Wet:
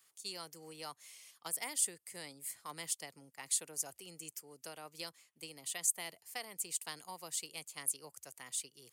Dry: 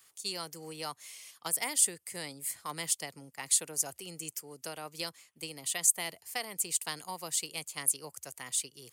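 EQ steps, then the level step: bass shelf 91 Hz -9 dB; -7.0 dB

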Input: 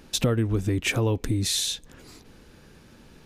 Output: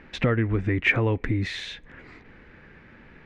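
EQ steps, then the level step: resonant low-pass 2 kHz, resonance Q 3.9; 0.0 dB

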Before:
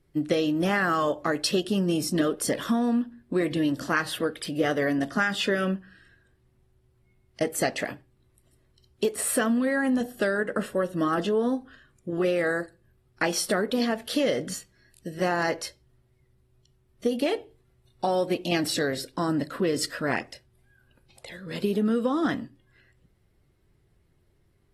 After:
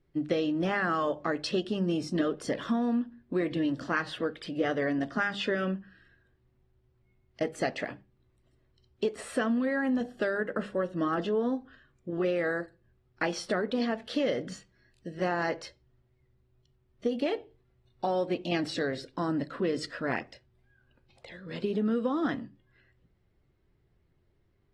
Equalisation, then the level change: distance through air 120 m; hum notches 50/100/150/200 Hz; -3.5 dB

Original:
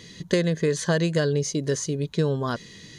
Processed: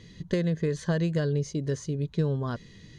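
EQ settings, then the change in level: low-pass 3.8 kHz 6 dB/octave; bass shelf 82 Hz +10 dB; bass shelf 210 Hz +6 dB; -7.5 dB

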